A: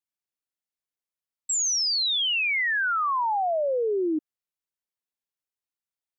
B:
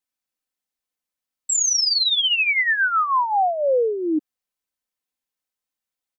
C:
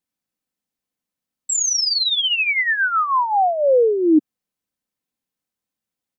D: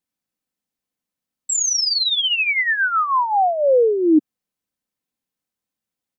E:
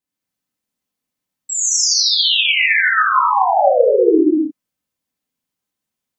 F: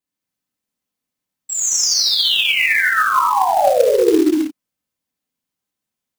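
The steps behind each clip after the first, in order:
comb 3.9 ms, depth 51%; gain +4 dB
bell 170 Hz +12 dB 2.4 oct
nothing audible
non-linear reverb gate 0.33 s flat, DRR -6.5 dB; gain -3 dB
short-mantissa float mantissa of 2-bit; gain -1 dB

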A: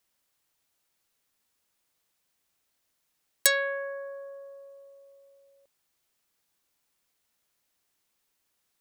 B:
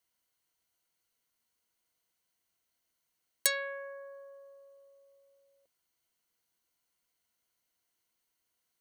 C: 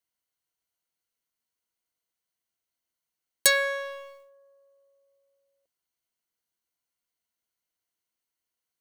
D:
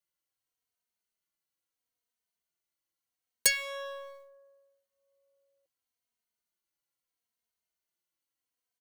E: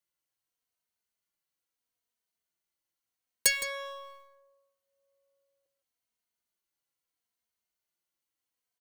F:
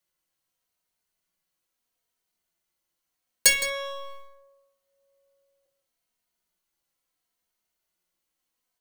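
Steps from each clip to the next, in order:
ripple EQ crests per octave 1.9, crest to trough 7 dB; gain -6 dB
sample leveller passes 3
endless flanger 3 ms -0.75 Hz
outdoor echo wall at 28 m, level -11 dB
shoebox room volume 190 m³, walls furnished, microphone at 1 m; gain +5 dB

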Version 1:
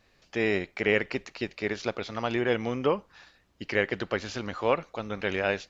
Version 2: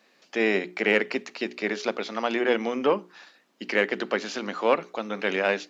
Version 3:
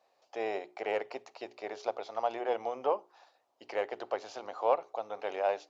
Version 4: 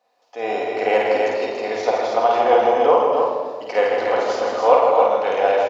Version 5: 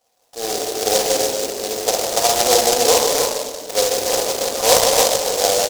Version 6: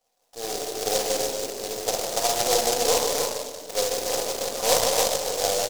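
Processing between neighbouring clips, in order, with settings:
one diode to ground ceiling -14.5 dBFS; steep high-pass 190 Hz 36 dB/oct; notches 60/120/180/240/300/360/420 Hz; gain +4 dB
EQ curve 110 Hz 0 dB, 180 Hz -28 dB, 750 Hz +3 dB, 1700 Hz -17 dB, 5200 Hz -12 dB; gain -1.5 dB
AGC gain up to 10 dB; tapped delay 51/160/286/325 ms -3/-6/-5/-8 dB; shoebox room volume 2000 m³, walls mixed, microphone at 1.9 m; gain +1 dB
noise-modulated delay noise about 5400 Hz, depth 0.18 ms
half-wave gain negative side -3 dB; gain -6 dB

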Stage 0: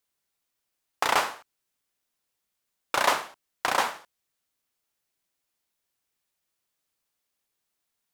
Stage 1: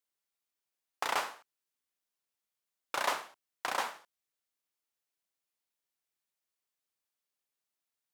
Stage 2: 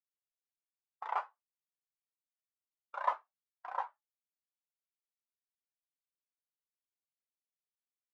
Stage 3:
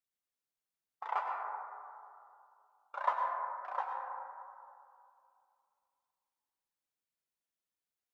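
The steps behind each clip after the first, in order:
low shelf 150 Hz -9 dB; gain -8.5 dB
spectral expander 2.5:1; gain -1 dB
reverb RT60 2.5 s, pre-delay 88 ms, DRR 1 dB

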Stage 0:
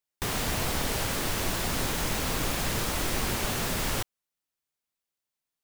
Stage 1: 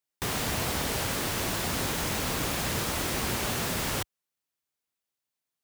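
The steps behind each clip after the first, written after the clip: HPF 55 Hz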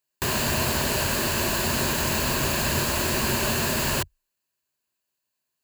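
ripple EQ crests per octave 1.4, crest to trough 8 dB; gain +4.5 dB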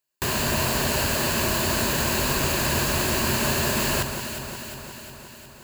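echo with dull and thin repeats by turns 0.179 s, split 1500 Hz, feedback 79%, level -6.5 dB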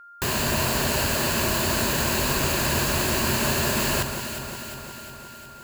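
whine 1400 Hz -44 dBFS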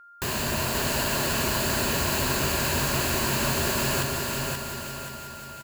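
feedback echo 0.53 s, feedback 35%, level -4 dB; gain -3.5 dB

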